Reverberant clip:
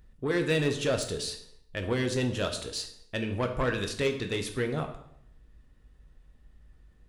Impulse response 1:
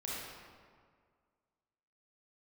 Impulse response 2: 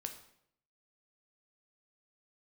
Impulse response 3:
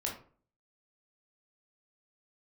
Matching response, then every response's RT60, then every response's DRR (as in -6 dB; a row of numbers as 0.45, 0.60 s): 2; 1.9, 0.70, 0.45 s; -7.0, 5.0, -2.0 dB